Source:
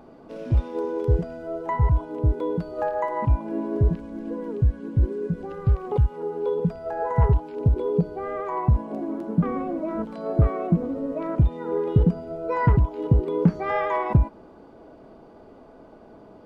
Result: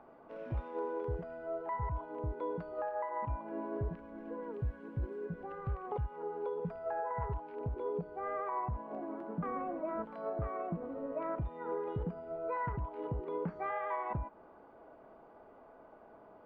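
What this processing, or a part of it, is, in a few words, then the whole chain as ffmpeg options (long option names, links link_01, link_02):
DJ mixer with the lows and highs turned down: -filter_complex "[0:a]asettb=1/sr,asplit=3[link_01][link_02][link_03];[link_01]atrim=end=4.534[link_04];[link_02]atrim=start=4.53:end=5.25,asetpts=PTS-STARTPTS,afade=type=in:duration=0.004:curve=qsin,afade=type=out:start_time=0.716:duration=0.004:curve=qsin,aemphasis=mode=production:type=cd[link_05];[link_03]atrim=start=5.246[link_06];[link_04][link_05]acrossfade=duration=0.004:curve1=hsin:curve2=qsin[link_07];[link_07][link_06]acrossfade=duration=0.004:curve1=qsin:curve2=hsin,acrossover=split=570 2400:gain=0.251 1 0.0794[link_08][link_09][link_10];[link_08][link_09][link_10]amix=inputs=3:normalize=0,alimiter=level_in=0.5dB:limit=-24dB:level=0:latency=1:release=275,volume=-0.5dB,volume=-3.5dB"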